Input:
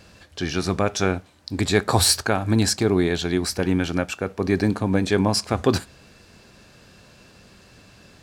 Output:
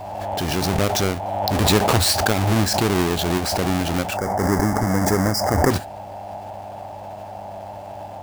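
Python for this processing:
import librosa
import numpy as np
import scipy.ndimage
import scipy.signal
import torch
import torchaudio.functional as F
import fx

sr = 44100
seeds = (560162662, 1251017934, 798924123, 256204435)

y = fx.halfwave_hold(x, sr)
y = fx.dmg_buzz(y, sr, base_hz=100.0, harmonics=35, level_db=-40.0, tilt_db=-6, odd_only=False)
y = fx.spec_box(y, sr, start_s=4.16, length_s=1.55, low_hz=2200.0, high_hz=4700.0, gain_db=-20)
y = fx.dmg_noise_band(y, sr, seeds[0], low_hz=570.0, high_hz=890.0, level_db=-31.0)
y = fx.pre_swell(y, sr, db_per_s=26.0)
y = y * librosa.db_to_amplitude(-4.5)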